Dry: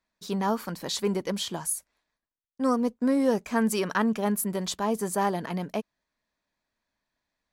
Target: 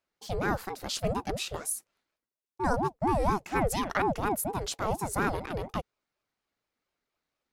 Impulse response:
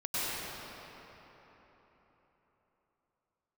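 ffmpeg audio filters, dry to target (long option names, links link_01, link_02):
-af "aeval=exprs='val(0)*sin(2*PI*430*n/s+430*0.5/4.2*sin(2*PI*4.2*n/s))':channel_layout=same"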